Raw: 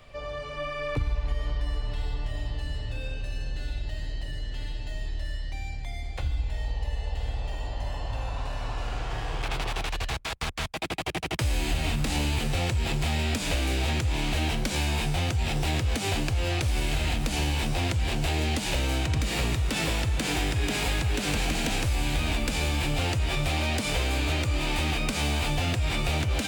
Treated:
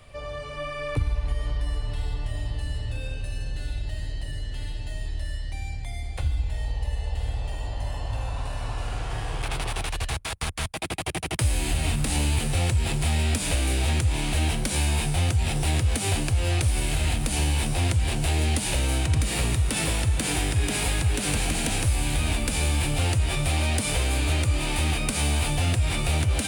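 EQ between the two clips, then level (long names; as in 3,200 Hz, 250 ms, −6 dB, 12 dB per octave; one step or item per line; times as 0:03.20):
parametric band 90 Hz +5.5 dB 1.1 octaves
parametric band 9,500 Hz +14 dB 0.4 octaves
0.0 dB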